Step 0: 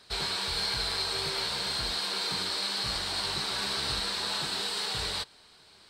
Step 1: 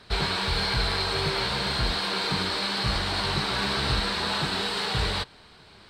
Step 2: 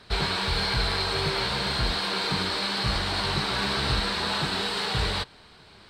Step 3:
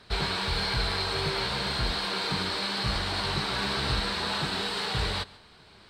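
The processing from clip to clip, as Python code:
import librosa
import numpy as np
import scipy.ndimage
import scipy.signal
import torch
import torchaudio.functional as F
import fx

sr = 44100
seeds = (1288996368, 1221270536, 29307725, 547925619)

y1 = fx.bass_treble(x, sr, bass_db=6, treble_db=-11)
y1 = F.gain(torch.from_numpy(y1), 7.5).numpy()
y2 = y1
y3 = y2 + 10.0 ** (-21.5 / 20.0) * np.pad(y2, (int(141 * sr / 1000.0), 0))[:len(y2)]
y3 = F.gain(torch.from_numpy(y3), -2.5).numpy()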